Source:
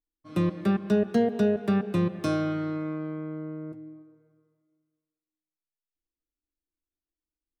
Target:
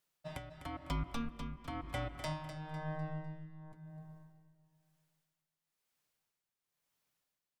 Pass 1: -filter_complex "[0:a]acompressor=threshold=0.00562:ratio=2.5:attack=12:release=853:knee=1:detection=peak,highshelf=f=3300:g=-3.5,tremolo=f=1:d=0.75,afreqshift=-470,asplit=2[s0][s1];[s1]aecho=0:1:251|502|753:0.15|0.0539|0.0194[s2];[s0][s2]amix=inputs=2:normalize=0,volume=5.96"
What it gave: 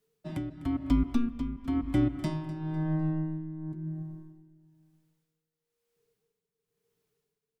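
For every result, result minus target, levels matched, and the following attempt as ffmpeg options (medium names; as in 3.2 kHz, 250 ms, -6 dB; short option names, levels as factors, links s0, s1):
1 kHz band -11.5 dB; echo-to-direct -6.5 dB
-filter_complex "[0:a]acompressor=threshold=0.00562:ratio=2.5:attack=12:release=853:knee=1:detection=peak,highpass=710,highshelf=f=3300:g=-3.5,tremolo=f=1:d=0.75,afreqshift=-470,asplit=2[s0][s1];[s1]aecho=0:1:251|502|753:0.15|0.0539|0.0194[s2];[s0][s2]amix=inputs=2:normalize=0,volume=5.96"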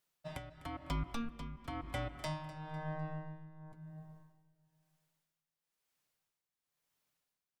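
echo-to-direct -6.5 dB
-filter_complex "[0:a]acompressor=threshold=0.00562:ratio=2.5:attack=12:release=853:knee=1:detection=peak,highpass=710,highshelf=f=3300:g=-3.5,tremolo=f=1:d=0.75,afreqshift=-470,asplit=2[s0][s1];[s1]aecho=0:1:251|502|753|1004:0.316|0.114|0.041|0.0148[s2];[s0][s2]amix=inputs=2:normalize=0,volume=5.96"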